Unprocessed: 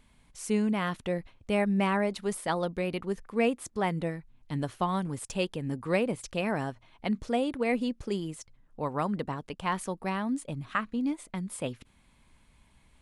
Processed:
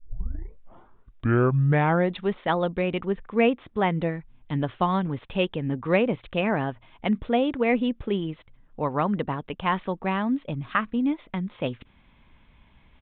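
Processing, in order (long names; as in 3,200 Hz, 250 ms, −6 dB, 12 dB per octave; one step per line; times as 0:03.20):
turntable start at the beginning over 2.32 s
downsampling to 8,000 Hz
level +5.5 dB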